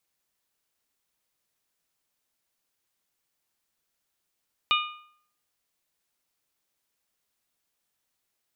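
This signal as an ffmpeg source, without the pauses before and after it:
ffmpeg -f lavfi -i "aevalsrc='0.0891*pow(10,-3*t/0.61)*sin(2*PI*1220*t)+0.0794*pow(10,-3*t/0.495)*sin(2*PI*2440*t)+0.0708*pow(10,-3*t/0.469)*sin(2*PI*2928*t)+0.0631*pow(10,-3*t/0.439)*sin(2*PI*3660*t)':duration=1.55:sample_rate=44100" out.wav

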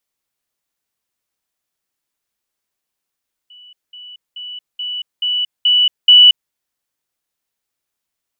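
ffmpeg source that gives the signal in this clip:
ffmpeg -f lavfi -i "aevalsrc='pow(10,(-39+6*floor(t/0.43))/20)*sin(2*PI*2960*t)*clip(min(mod(t,0.43),0.23-mod(t,0.43))/0.005,0,1)':duration=3.01:sample_rate=44100" out.wav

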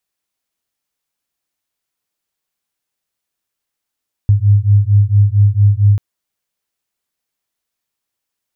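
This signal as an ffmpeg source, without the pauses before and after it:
ffmpeg -f lavfi -i "aevalsrc='0.299*(sin(2*PI*100*t)+sin(2*PI*104.4*t))':duration=1.69:sample_rate=44100" out.wav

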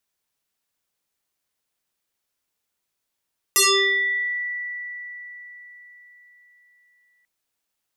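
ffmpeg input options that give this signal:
ffmpeg -f lavfi -i "aevalsrc='0.224*pow(10,-3*t/4.46)*sin(2*PI*1960*t+7.8*pow(10,-3*t/0.9)*sin(2*PI*0.8*1960*t))':duration=3.69:sample_rate=44100" out.wav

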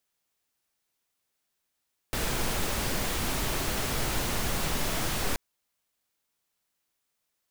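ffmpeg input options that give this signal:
ffmpeg -f lavfi -i "anoisesrc=color=pink:amplitude=0.182:duration=3.23:sample_rate=44100:seed=1" out.wav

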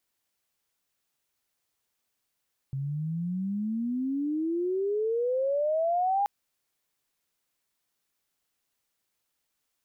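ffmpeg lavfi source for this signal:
ffmpeg -f lavfi -i "aevalsrc='pow(10,(-22.5+6.5*(t/3.53-1))/20)*sin(2*PI*133*3.53/(31.5*log(2)/12)*(exp(31.5*log(2)/12*t/3.53)-1))':duration=3.53:sample_rate=44100" out.wav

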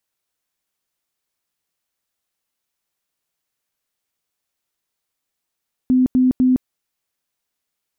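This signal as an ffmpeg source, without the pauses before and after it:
ffmpeg -f lavfi -i "aevalsrc='0.282*sin(2*PI*255*mod(t,0.25))*lt(mod(t,0.25),41/255)':duration=0.75:sample_rate=44100" out.wav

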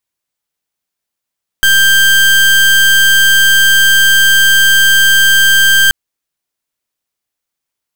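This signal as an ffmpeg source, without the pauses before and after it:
ffmpeg -f lavfi -i "aevalsrc='0.422*(2*lt(mod(1580*t,1),0.3)-1)':duration=4.28:sample_rate=44100" out.wav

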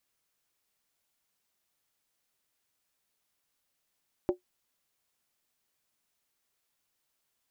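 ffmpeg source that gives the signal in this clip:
ffmpeg -f lavfi -i "aevalsrc='0.112*pow(10,-3*t/0.12)*sin(2*PI*361*t)+0.0447*pow(10,-3*t/0.095)*sin(2*PI*575.4*t)+0.0178*pow(10,-3*t/0.082)*sin(2*PI*771.1*t)+0.00708*pow(10,-3*t/0.079)*sin(2*PI*828.9*t)+0.00282*pow(10,-3*t/0.074)*sin(2*PI*957.7*t)':duration=0.63:sample_rate=44100" out.wav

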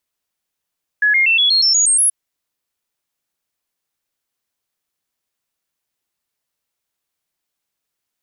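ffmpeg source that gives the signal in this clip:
ffmpeg -f lavfi -i "aevalsrc='0.299*clip(min(mod(t,0.12),0.12-mod(t,0.12))/0.005,0,1)*sin(2*PI*1690*pow(2,floor(t/0.12)/3)*mod(t,0.12))':duration=1.08:sample_rate=44100" out.wav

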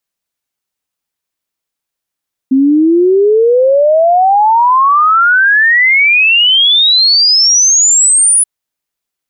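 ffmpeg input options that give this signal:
ffmpeg -f lavfi -i "aevalsrc='0.562*clip(min(t,5.93-t)/0.01,0,1)*sin(2*PI*260*5.93/log(10000/260)*(exp(log(10000/260)*t/5.93)-1))':duration=5.93:sample_rate=44100" out.wav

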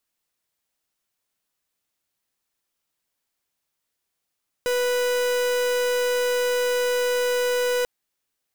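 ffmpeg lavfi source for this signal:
ffmpeg -f lavfi -i "aevalsrc='0.075*(2*lt(mod(493*t,1),0.44)-1)':duration=3.19:sample_rate=44100" out.wav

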